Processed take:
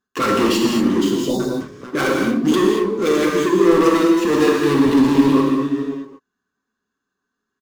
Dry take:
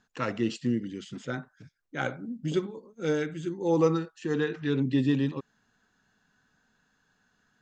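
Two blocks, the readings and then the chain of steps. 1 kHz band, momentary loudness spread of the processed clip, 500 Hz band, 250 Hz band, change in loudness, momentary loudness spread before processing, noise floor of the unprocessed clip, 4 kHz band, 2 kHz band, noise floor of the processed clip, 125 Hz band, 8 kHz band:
+16.5 dB, 8 LU, +13.0 dB, +14.5 dB, +13.0 dB, 13 LU, -72 dBFS, +16.5 dB, +12.5 dB, -80 dBFS, +4.5 dB, no reading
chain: comb of notches 160 Hz; delay 539 ms -19.5 dB; dynamic bell 2.9 kHz, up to +6 dB, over -50 dBFS, Q 0.75; waveshaping leveller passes 5; treble shelf 4.3 kHz +8.5 dB; small resonant body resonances 350/1100 Hz, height 15 dB, ringing for 20 ms; hard clipper -7.5 dBFS, distortion -11 dB; spectral selection erased 1.14–1.40 s, 1–3.5 kHz; gated-style reverb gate 260 ms flat, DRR -0.5 dB; trim -7.5 dB

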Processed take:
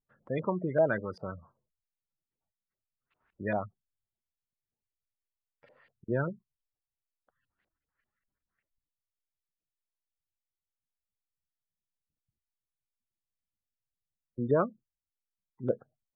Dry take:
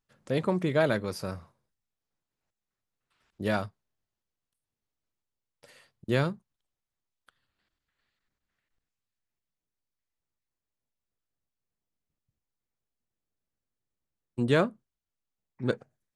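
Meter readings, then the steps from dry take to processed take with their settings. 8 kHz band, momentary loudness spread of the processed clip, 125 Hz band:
under -25 dB, 19 LU, -5.0 dB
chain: spectral gate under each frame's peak -20 dB strong; LFO low-pass saw up 5.1 Hz 520–2800 Hz; trim -5 dB

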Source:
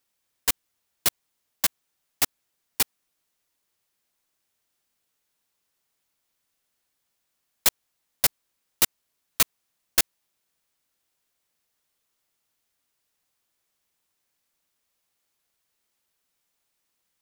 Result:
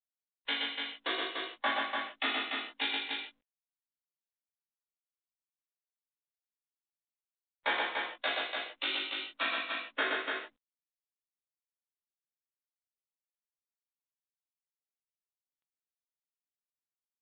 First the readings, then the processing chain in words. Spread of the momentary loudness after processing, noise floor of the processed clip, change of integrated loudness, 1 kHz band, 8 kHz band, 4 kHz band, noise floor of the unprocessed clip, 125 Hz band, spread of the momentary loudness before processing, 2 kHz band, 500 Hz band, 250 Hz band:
6 LU, under -85 dBFS, -8.5 dB, +3.0 dB, under -40 dB, -2.0 dB, -78 dBFS, under -20 dB, 4 LU, +3.0 dB, +2.0 dB, 0.0 dB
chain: expander on every frequency bin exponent 1.5; Chebyshev high-pass 250 Hz, order 10; compression 10:1, threshold -22 dBFS, peak gain reduction 6.5 dB; ring modulator 26 Hz; modulation noise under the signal 33 dB; harmonic tremolo 3 Hz, depth 70%, crossover 2.3 kHz; doubling 18 ms -3 dB; loudspeakers at several distances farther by 42 m -3 dB, 100 m -4 dB; gated-style reverb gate 190 ms falling, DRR -7.5 dB; trim +2 dB; µ-law 64 kbps 8 kHz

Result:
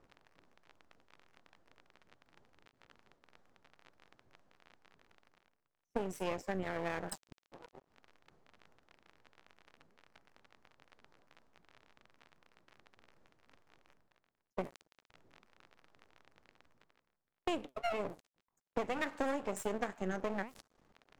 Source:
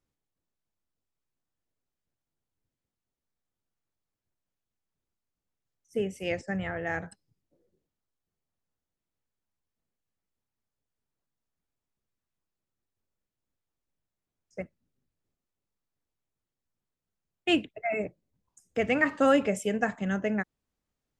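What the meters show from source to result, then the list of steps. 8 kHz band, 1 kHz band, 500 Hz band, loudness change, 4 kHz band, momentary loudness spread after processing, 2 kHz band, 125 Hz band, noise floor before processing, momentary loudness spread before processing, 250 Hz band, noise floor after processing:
-4.5 dB, -6.0 dB, -9.0 dB, -10.5 dB, -11.0 dB, 10 LU, -11.5 dB, -9.5 dB, under -85 dBFS, 19 LU, -11.5 dB, under -85 dBFS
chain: peaking EQ 2.6 kHz -11.5 dB 1.7 oct; flange 2 Hz, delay 3.6 ms, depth 4.7 ms, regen +77%; crackle 56 per s -63 dBFS; reverse; upward compressor, threshold -36 dBFS; reverse; level-controlled noise filter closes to 2.2 kHz, open at -36 dBFS; gate -53 dBFS, range -12 dB; half-wave rectifier; bass shelf 230 Hz -11 dB; compression 5:1, threshold -49 dBFS, peak gain reduction 18.5 dB; trim +15.5 dB

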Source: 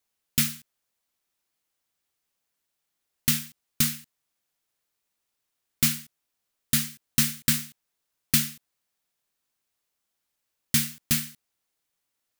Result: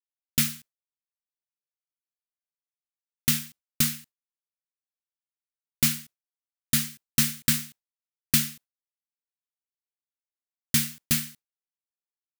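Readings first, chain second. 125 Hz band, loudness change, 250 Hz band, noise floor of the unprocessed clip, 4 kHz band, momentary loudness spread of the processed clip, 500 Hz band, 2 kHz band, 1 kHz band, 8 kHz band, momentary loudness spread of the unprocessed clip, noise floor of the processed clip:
0.0 dB, 0.0 dB, 0.0 dB, -81 dBFS, 0.0 dB, 12 LU, +1.5 dB, 0.0 dB, 0.0 dB, 0.0 dB, 13 LU, under -85 dBFS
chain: expander -41 dBFS

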